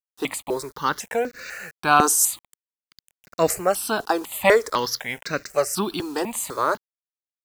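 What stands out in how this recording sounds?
a quantiser's noise floor 8-bit, dither none; notches that jump at a steady rate 4 Hz 590–3200 Hz

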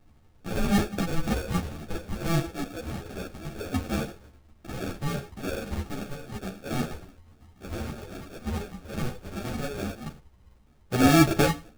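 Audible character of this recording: phasing stages 6, 1.8 Hz, lowest notch 590–4600 Hz; aliases and images of a low sample rate 1 kHz, jitter 0%; a shimmering, thickened sound

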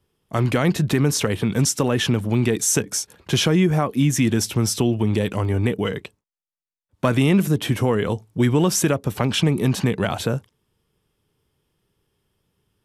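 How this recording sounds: noise floor -88 dBFS; spectral tilt -5.0 dB/octave

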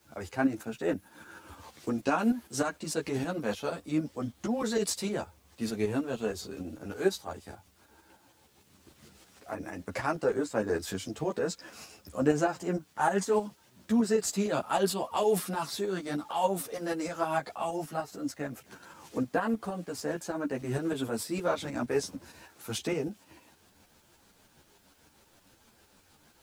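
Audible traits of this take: tremolo saw up 6.5 Hz, depth 60%; a quantiser's noise floor 12-bit, dither triangular; a shimmering, thickened sound

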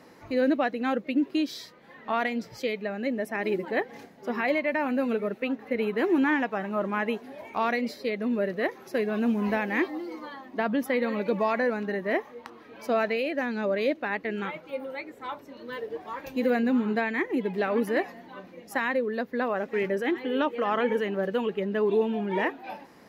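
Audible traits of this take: noise floor -51 dBFS; spectral tilt -4.0 dB/octave

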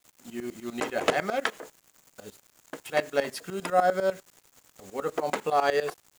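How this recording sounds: a quantiser's noise floor 8-bit, dither none; tremolo saw up 10 Hz, depth 85%

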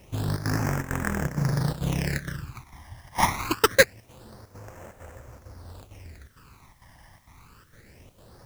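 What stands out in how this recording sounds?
aliases and images of a low sample rate 3.5 kHz, jitter 20%; phasing stages 12, 0.25 Hz, lowest notch 430–4300 Hz; chopped level 2.2 Hz, depth 65%, duty 80%; a quantiser's noise floor 12-bit, dither triangular

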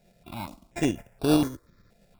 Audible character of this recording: a buzz of ramps at a fixed pitch in blocks of 8 samples; tremolo saw up 8.8 Hz, depth 40%; aliases and images of a low sample rate 3.1 kHz, jitter 0%; notches that jump at a steady rate 4.2 Hz 300–6800 Hz

